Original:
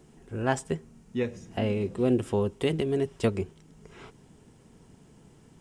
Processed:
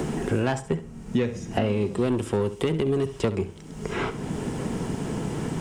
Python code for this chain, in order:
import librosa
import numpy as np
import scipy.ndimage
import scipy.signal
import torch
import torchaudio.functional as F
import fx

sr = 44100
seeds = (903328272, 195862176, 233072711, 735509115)

y = 10.0 ** (-22.0 / 20.0) * np.tanh(x / 10.0 ** (-22.0 / 20.0))
y = fx.room_flutter(y, sr, wall_m=11.4, rt60_s=0.28)
y = fx.band_squash(y, sr, depth_pct=100)
y = F.gain(torch.from_numpy(y), 5.0).numpy()